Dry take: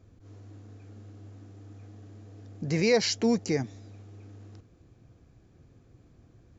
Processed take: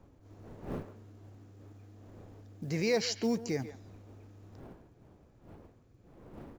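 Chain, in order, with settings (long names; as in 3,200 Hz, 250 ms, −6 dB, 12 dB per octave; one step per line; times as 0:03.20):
wind on the microphone 410 Hz −46 dBFS
far-end echo of a speakerphone 140 ms, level −12 dB
floating-point word with a short mantissa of 4 bits
level −6 dB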